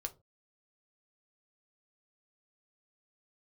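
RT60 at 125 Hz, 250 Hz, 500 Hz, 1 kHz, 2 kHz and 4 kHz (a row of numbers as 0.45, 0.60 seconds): 0.30, 0.30, 0.30, 0.20, 0.15, 0.15 seconds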